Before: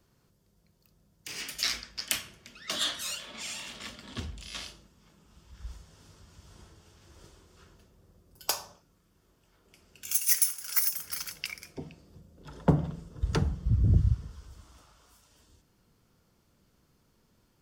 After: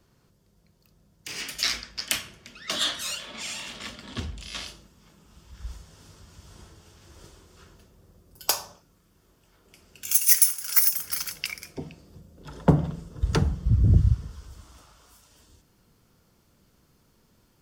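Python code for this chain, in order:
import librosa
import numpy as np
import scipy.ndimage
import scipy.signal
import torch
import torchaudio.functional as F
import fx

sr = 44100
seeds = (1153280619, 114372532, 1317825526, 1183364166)

y = fx.high_shelf(x, sr, hz=8700.0, db=fx.steps((0.0, -4.0), (4.66, 3.0)))
y = y * librosa.db_to_amplitude(4.5)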